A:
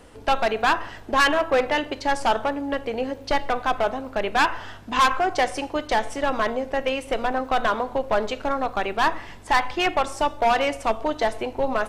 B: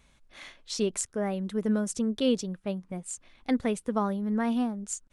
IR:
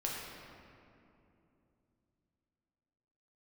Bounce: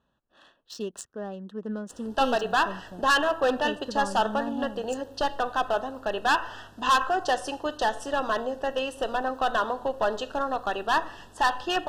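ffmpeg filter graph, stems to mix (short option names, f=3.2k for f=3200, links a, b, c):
-filter_complex "[0:a]lowshelf=f=240:g=-6.5,adelay=1900,volume=-2.5dB[a];[1:a]highpass=f=210:p=1,adynamicsmooth=sensitivity=7:basefreq=2.3k,volume=-4dB[b];[a][b]amix=inputs=2:normalize=0,asuperstop=centerf=2200:order=12:qfactor=3.2"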